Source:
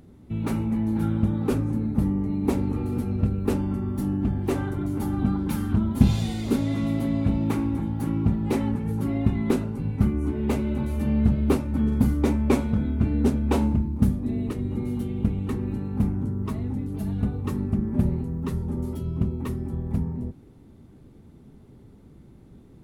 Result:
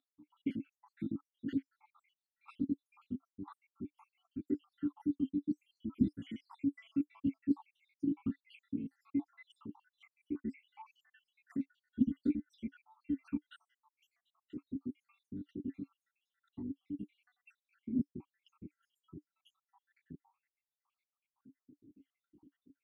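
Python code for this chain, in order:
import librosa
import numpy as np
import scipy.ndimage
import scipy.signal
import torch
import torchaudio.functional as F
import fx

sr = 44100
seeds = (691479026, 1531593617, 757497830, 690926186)

y = fx.spec_dropout(x, sr, seeds[0], share_pct=81)
y = fx.vowel_sweep(y, sr, vowels='i-u', hz=1.9)
y = y * 10.0 ** (1.5 / 20.0)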